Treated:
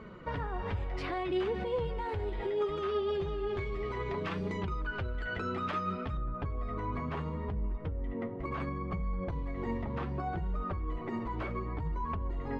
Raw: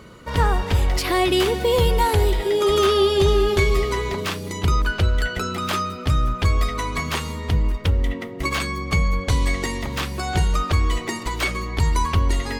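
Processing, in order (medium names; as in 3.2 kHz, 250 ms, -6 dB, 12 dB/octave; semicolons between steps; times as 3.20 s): low-pass 2.1 kHz 12 dB/octave, from 6.17 s 1.1 kHz; compression, threshold -22 dBFS, peak gain reduction 9 dB; peak limiter -22.5 dBFS, peak gain reduction 10.5 dB; flange 0.66 Hz, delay 4.4 ms, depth 5.2 ms, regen +45%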